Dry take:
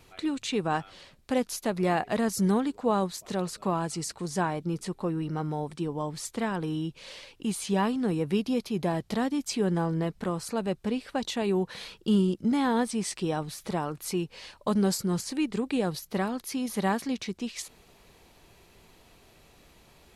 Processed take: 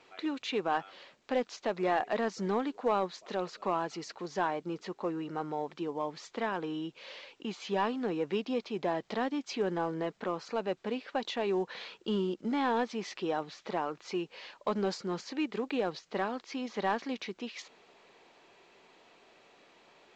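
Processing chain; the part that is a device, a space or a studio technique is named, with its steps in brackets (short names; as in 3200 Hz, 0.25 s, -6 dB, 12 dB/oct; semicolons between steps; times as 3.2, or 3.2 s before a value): telephone (BPF 350–3500 Hz; soft clip -18.5 dBFS, distortion -20 dB; A-law 128 kbps 16000 Hz)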